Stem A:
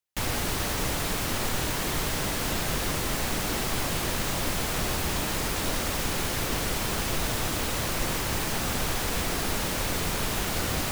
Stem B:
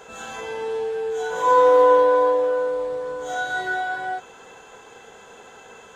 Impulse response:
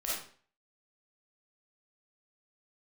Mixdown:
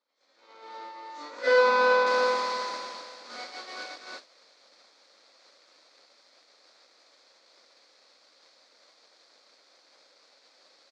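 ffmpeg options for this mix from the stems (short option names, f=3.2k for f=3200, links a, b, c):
-filter_complex "[0:a]highpass=f=450:p=1,adelay=1900,volume=-3dB[a];[1:a]equalizer=f=1.3k:w=2.6:g=-8.5,volume=-0.5dB[b];[a][b]amix=inputs=2:normalize=0,agate=range=-33dB:threshold=-21dB:ratio=3:detection=peak,aeval=exprs='abs(val(0))':c=same,highpass=f=300:w=0.5412,highpass=f=300:w=1.3066,equalizer=f=380:t=q:w=4:g=-5,equalizer=f=540:t=q:w=4:g=8,equalizer=f=920:t=q:w=4:g=-3,equalizer=f=1.7k:t=q:w=4:g=-3,equalizer=f=2.9k:t=q:w=4:g=-10,equalizer=f=4.4k:t=q:w=4:g=8,lowpass=f=5.5k:w=0.5412,lowpass=f=5.5k:w=1.3066"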